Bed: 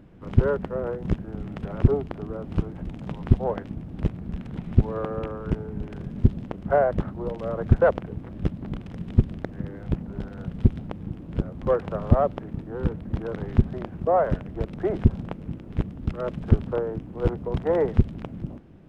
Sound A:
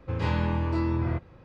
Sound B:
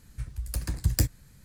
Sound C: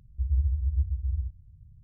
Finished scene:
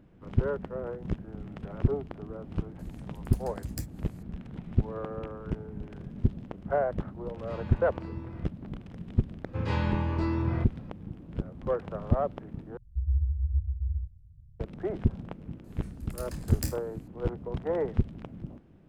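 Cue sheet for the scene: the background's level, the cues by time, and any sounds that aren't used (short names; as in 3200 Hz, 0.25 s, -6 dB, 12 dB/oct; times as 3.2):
bed -7 dB
2.79 add B -13 dB + upward compressor, threshold -34 dBFS
7.28 add A -15.5 dB
9.46 add A -2 dB
12.77 replace with C -7 dB + low shelf 160 Hz +6.5 dB
15.64 add B -8.5 dB + flutter echo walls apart 4.4 m, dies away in 0.26 s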